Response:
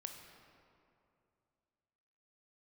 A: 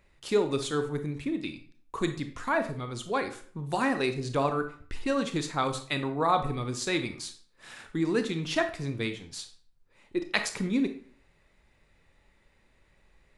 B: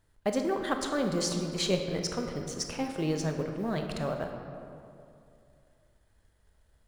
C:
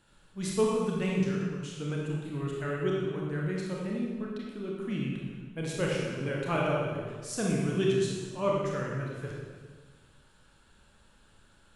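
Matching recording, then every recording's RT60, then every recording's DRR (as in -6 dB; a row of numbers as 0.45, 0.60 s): B; 0.50, 2.6, 1.5 s; 8.0, 4.0, -3.0 dB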